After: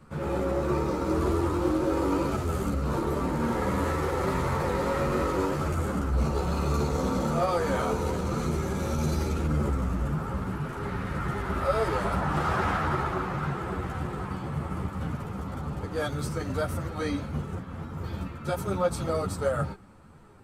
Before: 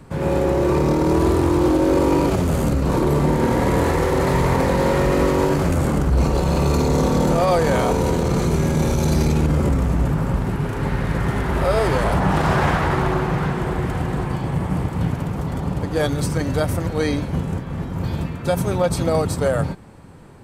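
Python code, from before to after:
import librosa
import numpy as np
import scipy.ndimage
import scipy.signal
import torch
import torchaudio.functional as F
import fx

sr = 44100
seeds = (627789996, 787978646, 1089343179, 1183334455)

y = fx.peak_eq(x, sr, hz=1300.0, db=9.5, octaves=0.26)
y = fx.ensemble(y, sr)
y = y * librosa.db_to_amplitude(-6.5)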